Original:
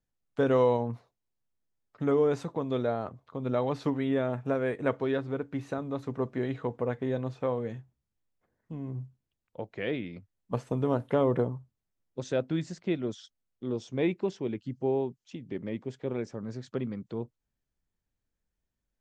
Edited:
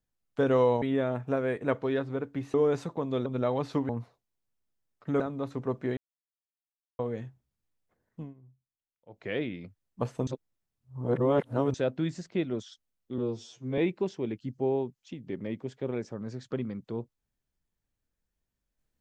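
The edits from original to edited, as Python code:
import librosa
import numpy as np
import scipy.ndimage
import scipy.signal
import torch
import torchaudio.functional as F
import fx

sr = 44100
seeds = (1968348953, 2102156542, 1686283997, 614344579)

y = fx.edit(x, sr, fx.swap(start_s=0.82, length_s=1.31, other_s=4.0, other_length_s=1.72),
    fx.cut(start_s=2.85, length_s=0.52),
    fx.silence(start_s=6.49, length_s=1.02),
    fx.fade_down_up(start_s=8.73, length_s=1.0, db=-19.5, fade_s=0.13),
    fx.reverse_span(start_s=10.79, length_s=1.47),
    fx.stretch_span(start_s=13.7, length_s=0.3, factor=2.0), tone=tone)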